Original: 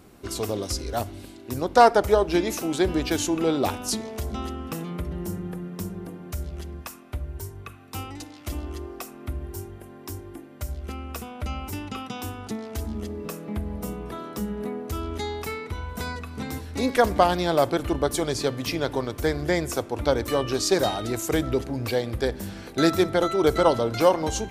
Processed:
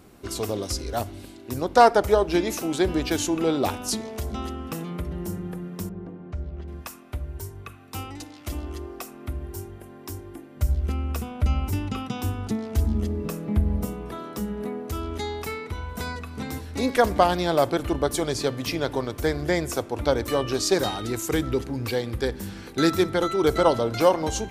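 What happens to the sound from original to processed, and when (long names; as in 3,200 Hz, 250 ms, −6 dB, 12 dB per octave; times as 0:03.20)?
0:05.89–0:06.68: head-to-tape spacing loss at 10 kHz 34 dB
0:10.56–0:13.85: low-shelf EQ 210 Hz +11 dB
0:20.78–0:23.49: parametric band 640 Hz −10 dB 0.29 octaves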